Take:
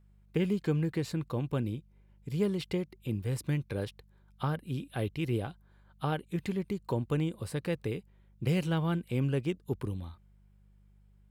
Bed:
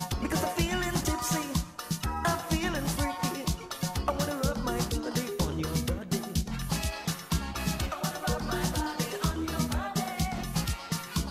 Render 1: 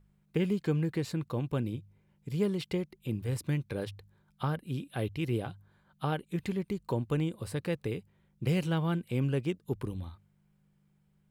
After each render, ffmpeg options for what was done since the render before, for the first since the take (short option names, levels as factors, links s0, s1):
-af "bandreject=f=50:t=h:w=4,bandreject=f=100:t=h:w=4"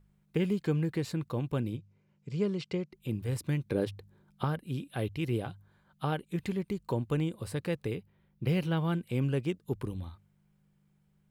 -filter_complex "[0:a]asettb=1/sr,asplit=3[s0][s1][s2];[s0]atrim=end=1.774[s3];[s1]atrim=start=1.77:end=2.93,asetpts=PTS-STARTPTS,afade=t=in:d=0.004:c=qsin,afade=t=out:st=1.156:d=0.004:c=qsin,highpass=110,equalizer=f=280:t=q:w=4:g=-5,equalizer=f=830:t=q:w=4:g=-5,equalizer=f=1800:t=q:w=4:g=-4,equalizer=f=3500:t=q:w=4:g=-5,lowpass=f=6900:w=0.5412,lowpass=f=6900:w=1.3066[s4];[s2]atrim=start=2.926[s5];[s3][s4]acrossfade=d=0.004:c1=hsin:c2=qsin[s6];[s6][s5]acrossfade=d=0.004:c1=qsin:c2=hsin,asettb=1/sr,asplit=3[s7][s8][s9];[s7]atrim=end=3.664[s10];[s8]atrim=start=3.66:end=4.44,asetpts=PTS-STARTPTS,afade=t=in:d=0.004:c=qsin,afade=t=out:st=0.776:d=0.004:c=qsin,equalizer=f=310:t=o:w=1.8:g=8.5[s11];[s9]atrim=start=4.436[s12];[s10][s11]acrossfade=d=0.004:c1=hsin:c2=qsin[s13];[s13][s12]acrossfade=d=0.004:c1=qsin:c2=hsin,asettb=1/sr,asplit=3[s14][s15][s16];[s14]atrim=end=7.954[s17];[s15]atrim=start=7.95:end=8.78,asetpts=PTS-STARTPTS,afade=t=in:d=0.004:c=qsin,afade=t=out:st=0.826:d=0.004:c=qsin,equalizer=f=7600:w=1.7:g=-11.5[s18];[s16]atrim=start=8.776[s19];[s17][s18]acrossfade=d=0.004:c1=hsin:c2=qsin[s20];[s20][s19]acrossfade=d=0.004:c1=qsin:c2=hsin"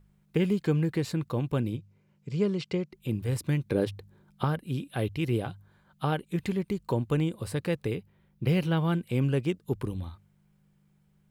-af "volume=1.5"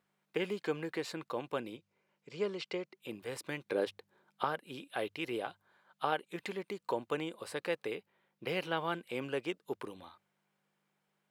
-af "highpass=530,highshelf=f=6500:g=-9.5"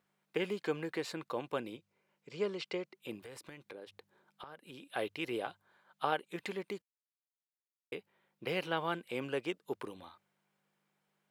-filter_complex "[0:a]asettb=1/sr,asplit=3[s0][s1][s2];[s0]atrim=end=3.254[s3];[s1]atrim=start=3.25:end=4.86,asetpts=PTS-STARTPTS,afade=t=in:d=0.004:c=qsin,afade=t=out:st=1.606:d=0.004:c=qsin,acompressor=threshold=0.00501:ratio=6:attack=3.2:release=140:knee=1:detection=peak[s4];[s2]atrim=start=4.856[s5];[s3][s4]acrossfade=d=0.004:c1=hsin:c2=qsin[s6];[s6][s5]acrossfade=d=0.004:c1=qsin:c2=hsin,asplit=3[s7][s8][s9];[s7]atrim=end=6.82,asetpts=PTS-STARTPTS,afade=t=out:st=6.816:d=0.004:c=hsin[s10];[s8]atrim=start=6.82:end=7.92,asetpts=PTS-STARTPTS,volume=0[s11];[s9]atrim=start=7.92,asetpts=PTS-STARTPTS,afade=t=in:d=0.004:c=hsin[s12];[s10][s11][s12]concat=n=3:v=0:a=1"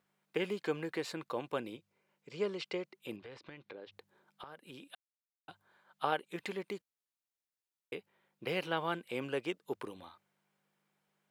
-filter_complex "[0:a]asettb=1/sr,asplit=3[s0][s1][s2];[s0]atrim=end=3.164[s3];[s1]atrim=start=3.16:end=3.92,asetpts=PTS-STARTPTS,afade=t=in:d=0.004:c=qsin,afade=t=out:st=0.756:d=0.004:c=qsin,lowpass=f=4800:w=0.5412,lowpass=f=4800:w=1.3066[s4];[s2]atrim=start=3.916[s5];[s3][s4]acrossfade=d=0.004:c1=hsin:c2=qsin[s6];[s6][s5]acrossfade=d=0.004:c1=qsin:c2=hsin,asplit=3[s7][s8][s9];[s7]atrim=end=4.95,asetpts=PTS-STARTPTS,afade=t=out:st=4.946:d=0.004:c=hsin[s10];[s8]atrim=start=4.95:end=5.48,asetpts=PTS-STARTPTS,volume=0[s11];[s9]atrim=start=5.48,asetpts=PTS-STARTPTS,afade=t=in:d=0.004:c=hsin[s12];[s10][s11][s12]concat=n=3:v=0:a=1"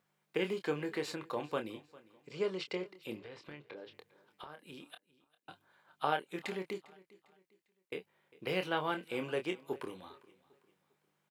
-filter_complex "[0:a]asplit=2[s0][s1];[s1]adelay=27,volume=0.422[s2];[s0][s2]amix=inputs=2:normalize=0,aecho=1:1:401|802|1203:0.0841|0.0303|0.0109"